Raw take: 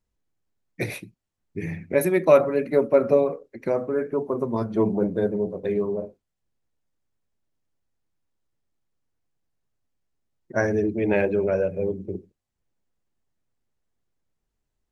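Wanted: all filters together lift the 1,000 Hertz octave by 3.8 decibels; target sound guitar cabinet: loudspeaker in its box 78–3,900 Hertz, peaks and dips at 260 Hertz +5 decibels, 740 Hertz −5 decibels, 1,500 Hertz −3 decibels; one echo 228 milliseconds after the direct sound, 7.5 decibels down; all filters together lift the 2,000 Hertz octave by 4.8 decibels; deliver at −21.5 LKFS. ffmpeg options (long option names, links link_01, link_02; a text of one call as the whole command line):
ffmpeg -i in.wav -af "highpass=78,equalizer=frequency=260:width_type=q:width=4:gain=5,equalizer=frequency=740:width_type=q:width=4:gain=-5,equalizer=frequency=1500:width_type=q:width=4:gain=-3,lowpass=frequency=3900:width=0.5412,lowpass=frequency=3900:width=1.3066,equalizer=frequency=1000:width_type=o:gain=5.5,equalizer=frequency=2000:width_type=o:gain=6,aecho=1:1:228:0.422" out.wav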